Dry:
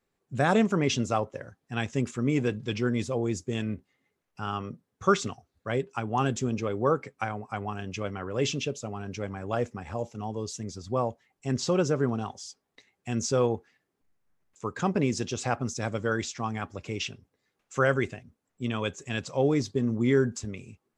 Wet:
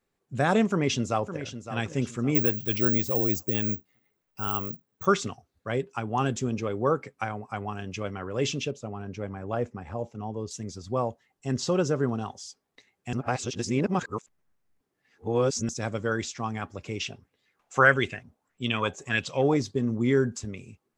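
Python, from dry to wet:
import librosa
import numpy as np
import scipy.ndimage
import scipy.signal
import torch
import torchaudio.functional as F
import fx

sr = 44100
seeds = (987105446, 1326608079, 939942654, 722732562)

y = fx.echo_throw(x, sr, start_s=0.67, length_s=1.08, ms=560, feedback_pct=35, wet_db=-11.0)
y = fx.resample_bad(y, sr, factor=2, down='filtered', up='zero_stuff', at=(2.35, 5.06))
y = fx.high_shelf(y, sr, hz=2600.0, db=-10.5, at=(8.71, 10.51))
y = fx.notch(y, sr, hz=2300.0, q=11.0, at=(11.1, 12.36))
y = fx.bell_lfo(y, sr, hz=1.6, low_hz=680.0, high_hz=3300.0, db=14, at=(17.09, 19.57))
y = fx.edit(y, sr, fx.reverse_span(start_s=13.13, length_s=2.56), tone=tone)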